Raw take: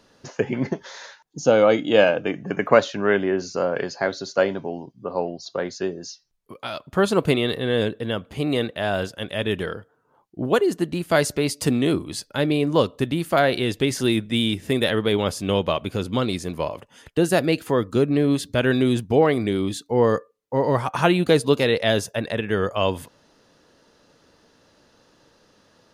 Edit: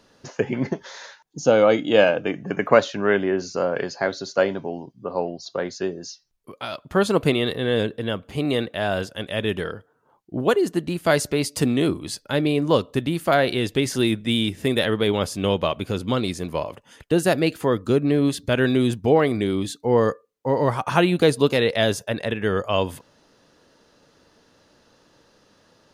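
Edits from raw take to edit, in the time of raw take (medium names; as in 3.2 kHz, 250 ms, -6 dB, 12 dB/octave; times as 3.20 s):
shrink pauses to 90%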